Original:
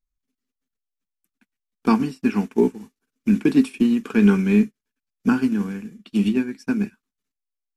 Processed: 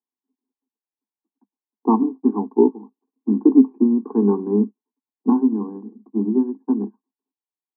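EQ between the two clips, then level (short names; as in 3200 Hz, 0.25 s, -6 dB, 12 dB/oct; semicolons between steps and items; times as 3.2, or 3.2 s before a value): Chebyshev band-pass 200–1100 Hz, order 5; bell 550 Hz -7.5 dB 0.75 oct; fixed phaser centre 870 Hz, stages 8; +8.0 dB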